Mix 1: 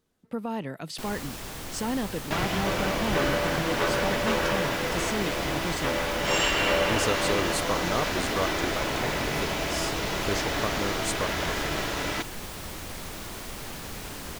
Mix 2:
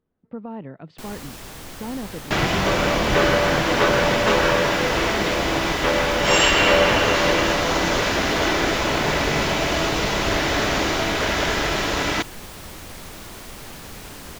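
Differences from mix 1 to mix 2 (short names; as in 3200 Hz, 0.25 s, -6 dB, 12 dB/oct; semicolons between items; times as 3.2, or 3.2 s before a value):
speech: add tape spacing loss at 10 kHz 44 dB; second sound +8.0 dB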